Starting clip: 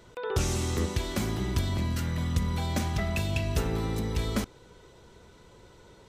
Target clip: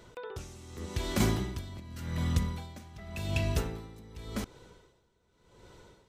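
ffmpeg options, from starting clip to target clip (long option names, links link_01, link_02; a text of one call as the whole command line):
ffmpeg -i in.wav -filter_complex "[0:a]asettb=1/sr,asplit=3[link_01][link_02][link_03];[link_01]atrim=end=1.204[link_04];[link_02]atrim=start=1.2:end=1.8,asetpts=PTS-STARTPTS,afade=type=in:duration=0.004:curve=qsin,afade=type=out:start_time=0.596:duration=0.004:curve=qsin,acontrast=53[link_05];[link_03]atrim=start=1.796[link_06];[link_04][link_05]acrossfade=duration=0.004:curve1=hsin:curve2=qsin[link_07];[link_07][link_06]acrossfade=duration=0.004:curve1=qsin:curve2=hsin,aeval=exprs='val(0)*pow(10,-20*(0.5-0.5*cos(2*PI*0.87*n/s))/20)':channel_layout=same" out.wav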